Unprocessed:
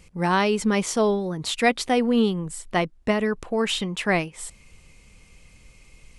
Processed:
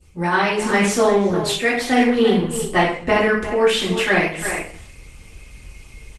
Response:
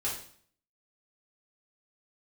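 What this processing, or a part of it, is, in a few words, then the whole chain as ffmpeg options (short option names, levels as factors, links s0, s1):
speakerphone in a meeting room: -filter_complex "[0:a]asettb=1/sr,asplit=3[s0][s1][s2];[s0]atrim=end=2.154[s3];[s1]atrim=start=2.15:end=2.65,asetpts=PTS-STARTPTS,afade=t=in:d=0.004:c=qsin,afade=t=out:st=0.496:d=0.004:c=qsin,agate=range=0.0224:threshold=0.0158:ratio=3:detection=peak[s4];[s2]atrim=start=2.646[s5];[s3][s4]acrossfade=d=0.004:c1=hsin:c2=qsin[s6];[s6][s5]acrossfade=d=0.004:c1=qsin:c2=hsin,adynamicequalizer=threshold=0.01:dfrequency=1900:dqfactor=1.7:tfrequency=1900:tqfactor=1.7:attack=5:release=100:ratio=0.375:range=3:mode=boostabove:tftype=bell[s7];[1:a]atrim=start_sample=2205[s8];[s7][s8]afir=irnorm=-1:irlink=0,asplit=2[s9][s10];[s10]adelay=350,highpass=300,lowpass=3400,asoftclip=type=hard:threshold=0.282,volume=0.282[s11];[s9][s11]amix=inputs=2:normalize=0,dynaudnorm=f=100:g=3:m=2.66,volume=0.708" -ar 48000 -c:a libopus -b:a 20k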